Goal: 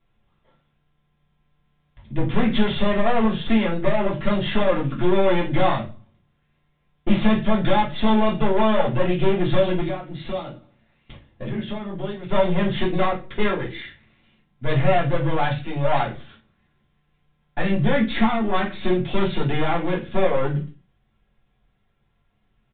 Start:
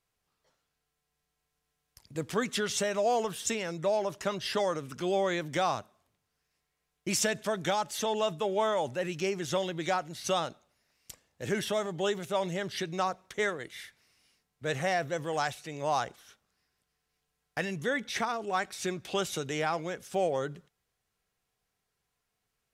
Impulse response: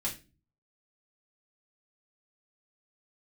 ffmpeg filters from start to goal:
-filter_complex "[0:a]lowshelf=f=490:g=8.5,asettb=1/sr,asplit=3[a][b][c];[a]atrim=end=9.804[d];[b]atrim=start=9.8:end=12.29,asetpts=PTS-STARTPTS,afade=t=in:d=0.004:c=qsin,afade=t=out:st=2.486:d=0.004:c=qsin,acompressor=threshold=-35dB:ratio=10[e];[c]atrim=start=12.286[f];[d][e]acrossfade=d=0.004:c1=hsin:c2=qsin[g];[g][f]acrossfade=d=0.004:c1=qsin:c2=hsin,aeval=exprs='(tanh(25.1*val(0)+0.55)-tanh(0.55))/25.1':c=same[h];[1:a]atrim=start_sample=2205,afade=t=out:st=0.32:d=0.01,atrim=end_sample=14553[i];[h][i]afir=irnorm=-1:irlink=0,aresample=8000,aresample=44100,volume=8dB"

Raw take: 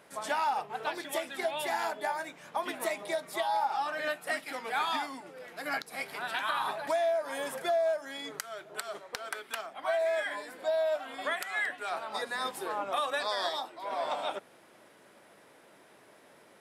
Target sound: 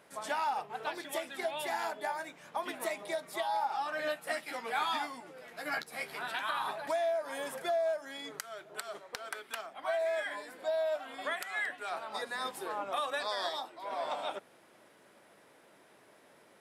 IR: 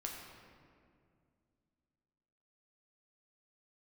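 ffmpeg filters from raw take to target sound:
-filter_complex "[0:a]asettb=1/sr,asplit=3[a][b][c];[a]atrim=end=3.914[d];[b]atrim=start=3.91:end=6.32,asetpts=PTS-STARTPTS,afade=t=in:d=0.004:c=qsin,afade=t=out:st=2.406:d=0.004:c=qsin,asplit=2[e][f];[f]adelay=13,volume=-5dB[g];[e][g]amix=inputs=2:normalize=0,atrim=end_sample=106281[h];[c]atrim=start=6.316[i];[d][h]acrossfade=d=0.004:c1=hsin:c2=qsin[j];[j][i]acrossfade=d=0.004:c1=qsin:c2=hsin,volume=-3dB"

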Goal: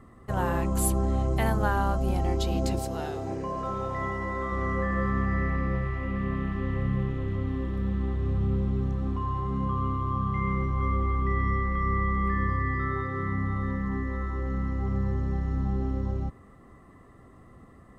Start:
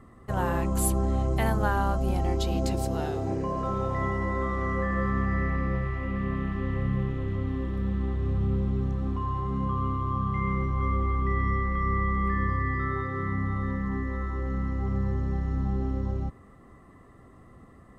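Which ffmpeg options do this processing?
-filter_complex "[0:a]asettb=1/sr,asplit=3[a][b][c];[a]atrim=end=2.794[d];[b]atrim=start=2.79:end=4.52,asetpts=PTS-STARTPTS,afade=t=in:d=0.004:c=qsin,afade=t=out:st=1.726:d=0.004:c=qsin,lowshelf=f=410:g=-5.5[e];[c]atrim=start=4.516[f];[d][e]acrossfade=d=0.004:c1=hsin:c2=qsin[g];[g][f]acrossfade=d=0.004:c1=qsin:c2=hsin"

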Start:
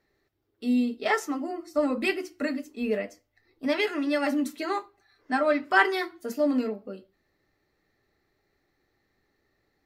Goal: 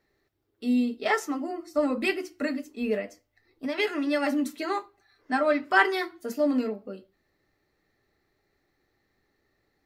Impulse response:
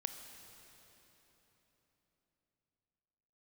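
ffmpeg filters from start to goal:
-filter_complex "[0:a]asettb=1/sr,asplit=3[a][b][c];[a]atrim=end=2.994[d];[b]atrim=start=2.99:end=3.78,asetpts=PTS-STARTPTS,afade=t=in:d=0.004:c=qsin,afade=t=out:st=0.786:d=0.004:c=qsin,acompressor=threshold=-29dB:ratio=3[e];[c]atrim=start=3.776[f];[d][e]acrossfade=d=0.004:c1=hsin:c2=qsin[g];[g][f]acrossfade=d=0.004:c1=qsin:c2=hsin"

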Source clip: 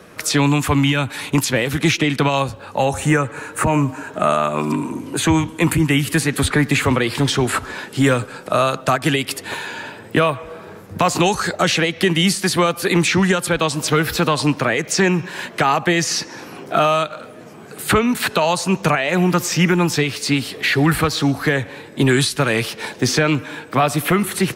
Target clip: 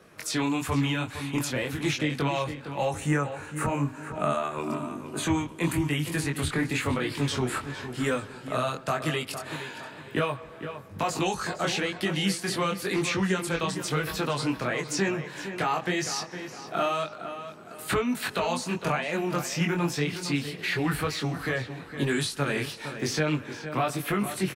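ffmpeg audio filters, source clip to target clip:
-filter_complex "[0:a]flanger=delay=19.5:depth=4.8:speed=0.99,asplit=2[a][b];[b]adelay=460,lowpass=f=3.7k:p=1,volume=-10dB,asplit=2[c][d];[d]adelay=460,lowpass=f=3.7k:p=1,volume=0.37,asplit=2[e][f];[f]adelay=460,lowpass=f=3.7k:p=1,volume=0.37,asplit=2[g][h];[h]adelay=460,lowpass=f=3.7k:p=1,volume=0.37[i];[a][c][e][g][i]amix=inputs=5:normalize=0,volume=-8dB"

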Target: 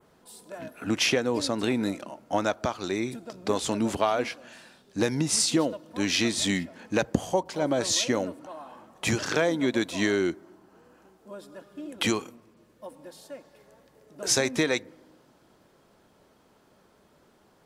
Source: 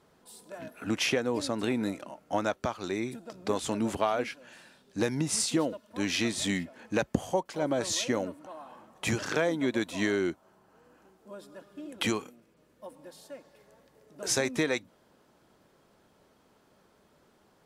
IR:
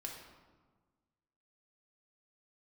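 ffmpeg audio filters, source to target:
-filter_complex "[0:a]adynamicequalizer=threshold=0.00447:dfrequency=4800:dqfactor=0.98:tfrequency=4800:tqfactor=0.98:attack=5:release=100:ratio=0.375:range=2:mode=boostabove:tftype=bell,asplit=2[a][b];[1:a]atrim=start_sample=2205,lowpass=1.5k[c];[b][c]afir=irnorm=-1:irlink=0,volume=-17dB[d];[a][d]amix=inputs=2:normalize=0,volume=2.5dB"

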